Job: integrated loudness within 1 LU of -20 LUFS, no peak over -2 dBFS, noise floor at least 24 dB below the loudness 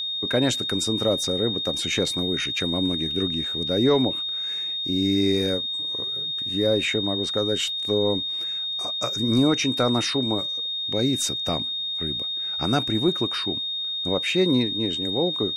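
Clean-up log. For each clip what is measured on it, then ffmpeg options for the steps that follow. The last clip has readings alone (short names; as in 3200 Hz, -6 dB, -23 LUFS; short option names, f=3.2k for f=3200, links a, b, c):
steady tone 3700 Hz; tone level -26 dBFS; loudness -23.0 LUFS; peak -10.5 dBFS; loudness target -20.0 LUFS
-> -af "bandreject=f=3.7k:w=30"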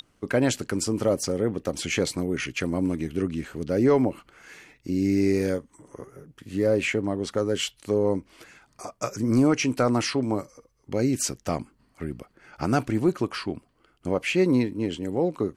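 steady tone none; loudness -25.5 LUFS; peak -11.5 dBFS; loudness target -20.0 LUFS
-> -af "volume=5.5dB"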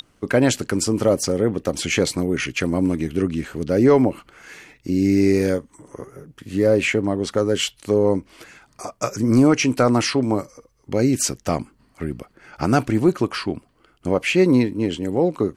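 loudness -20.0 LUFS; peak -6.0 dBFS; noise floor -60 dBFS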